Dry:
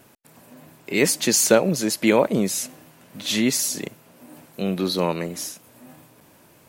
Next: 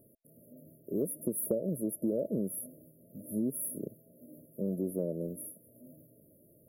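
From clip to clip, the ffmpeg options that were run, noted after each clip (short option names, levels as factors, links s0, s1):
-af "afftfilt=real='re*(1-between(b*sr/4096,660,10000))':imag='im*(1-between(b*sr/4096,660,10000))':win_size=4096:overlap=0.75,acompressor=threshold=0.0891:ratio=5,volume=0.447"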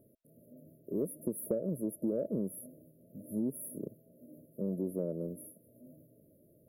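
-filter_complex "[0:a]asplit=2[s0][s1];[s1]asoftclip=type=tanh:threshold=0.0562,volume=0.316[s2];[s0][s2]amix=inputs=2:normalize=0,highshelf=f=5100:g=-7,volume=0.668"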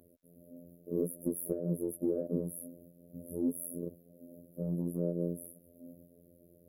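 -filter_complex "[0:a]acrossover=split=500|3400[s0][s1][s2];[s1]alimiter=level_in=6.68:limit=0.0631:level=0:latency=1,volume=0.15[s3];[s0][s3][s2]amix=inputs=3:normalize=0,afftfilt=real='hypot(re,im)*cos(PI*b)':imag='0':win_size=2048:overlap=0.75,volume=1.88"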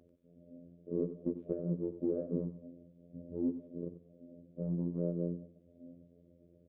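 -af "aresample=8000,aresample=44100,aecho=1:1:92|184|276:0.266|0.0665|0.0166,volume=0.841"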